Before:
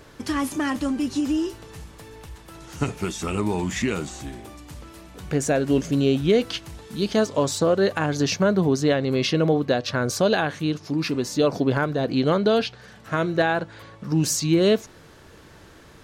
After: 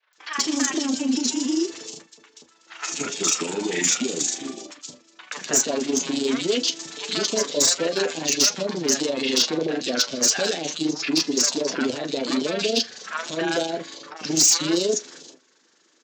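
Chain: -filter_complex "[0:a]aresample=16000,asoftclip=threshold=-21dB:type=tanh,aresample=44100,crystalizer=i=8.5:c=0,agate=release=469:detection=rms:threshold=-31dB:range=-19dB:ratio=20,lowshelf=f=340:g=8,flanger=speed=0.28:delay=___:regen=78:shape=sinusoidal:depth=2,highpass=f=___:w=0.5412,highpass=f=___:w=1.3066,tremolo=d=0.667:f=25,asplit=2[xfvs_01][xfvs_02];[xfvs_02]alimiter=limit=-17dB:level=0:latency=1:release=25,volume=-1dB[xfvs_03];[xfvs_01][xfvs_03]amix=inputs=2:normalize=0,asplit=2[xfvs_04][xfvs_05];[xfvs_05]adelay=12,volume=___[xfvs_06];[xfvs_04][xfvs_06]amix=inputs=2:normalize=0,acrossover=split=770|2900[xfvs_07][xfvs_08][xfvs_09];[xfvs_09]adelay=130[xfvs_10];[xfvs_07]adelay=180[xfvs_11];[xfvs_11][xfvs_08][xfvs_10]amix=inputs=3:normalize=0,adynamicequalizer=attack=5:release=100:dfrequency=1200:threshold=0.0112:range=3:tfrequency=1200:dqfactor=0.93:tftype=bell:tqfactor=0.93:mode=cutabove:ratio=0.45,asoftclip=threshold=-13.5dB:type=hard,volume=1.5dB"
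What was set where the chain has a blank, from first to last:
6.7, 260, 260, -10dB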